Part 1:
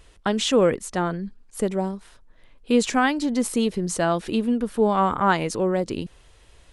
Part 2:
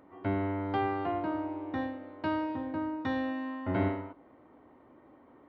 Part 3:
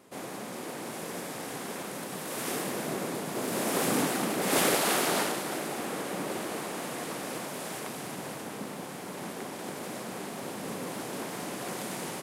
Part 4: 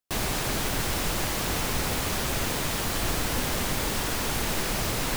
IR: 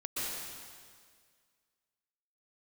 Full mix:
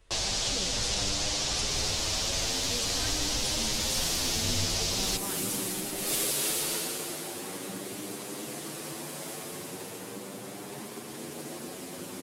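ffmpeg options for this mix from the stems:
-filter_complex "[0:a]volume=0.355,asplit=2[s0][s1];[s1]volume=0.531[s2];[1:a]adelay=750,volume=1.26[s3];[2:a]aphaser=in_gain=1:out_gain=1:delay=2.3:decay=0.2:speed=0.3:type=triangular,equalizer=f=360:w=1.5:g=6,adelay=1550,volume=1.12,asplit=2[s4][s5];[s5]volume=0.501[s6];[3:a]lowpass=f=6100:w=0.5412,lowpass=f=6100:w=1.3066,crystalizer=i=5.5:c=0,equalizer=f=600:t=o:w=1.9:g=14,volume=0.75[s7];[4:a]atrim=start_sample=2205[s8];[s2][s6]amix=inputs=2:normalize=0[s9];[s9][s8]afir=irnorm=-1:irlink=0[s10];[s0][s3][s4][s7][s10]amix=inputs=5:normalize=0,acrossover=split=130|3000[s11][s12][s13];[s12]acompressor=threshold=0.0112:ratio=3[s14];[s11][s14][s13]amix=inputs=3:normalize=0,asplit=2[s15][s16];[s16]adelay=8.7,afreqshift=0.42[s17];[s15][s17]amix=inputs=2:normalize=1"

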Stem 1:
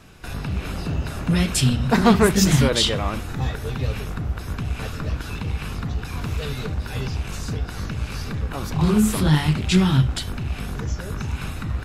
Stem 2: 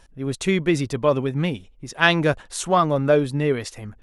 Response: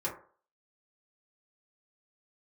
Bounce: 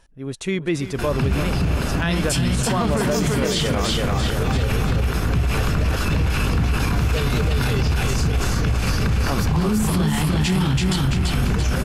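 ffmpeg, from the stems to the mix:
-filter_complex "[0:a]bandreject=f=3800:w=15,acompressor=threshold=0.112:ratio=6,adelay=750,volume=1.41,asplit=2[s0][s1];[s1]volume=0.708[s2];[1:a]volume=0.668,asplit=2[s3][s4];[s4]volume=0.188[s5];[s2][s5]amix=inputs=2:normalize=0,aecho=0:1:335|670|1005|1340|1675|2010:1|0.43|0.185|0.0795|0.0342|0.0147[s6];[s0][s3][s6]amix=inputs=3:normalize=0,dynaudnorm=f=220:g=9:m=3.76,alimiter=limit=0.251:level=0:latency=1:release=38"

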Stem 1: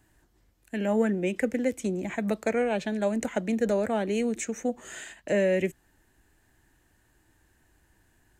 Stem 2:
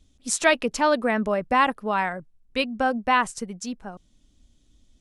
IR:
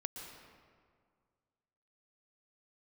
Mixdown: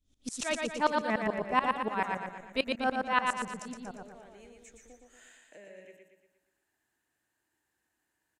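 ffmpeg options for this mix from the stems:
-filter_complex "[0:a]acompressor=threshold=0.00794:ratio=2,highpass=f=500:p=1,adelay=250,volume=0.211,asplit=2[s0][s1];[s1]volume=0.631[s2];[1:a]aeval=exprs='val(0)*pow(10,-22*if(lt(mod(-6.9*n/s,1),2*abs(-6.9)/1000),1-mod(-6.9*n/s,1)/(2*abs(-6.9)/1000),(mod(-6.9*n/s,1)-2*abs(-6.9)/1000)/(1-2*abs(-6.9)/1000))/20)':c=same,volume=0.794,asplit=2[s3][s4];[s4]volume=0.668[s5];[s2][s5]amix=inputs=2:normalize=0,aecho=0:1:117|234|351|468|585|702|819:1|0.49|0.24|0.118|0.0576|0.0282|0.0138[s6];[s0][s3][s6]amix=inputs=3:normalize=0"

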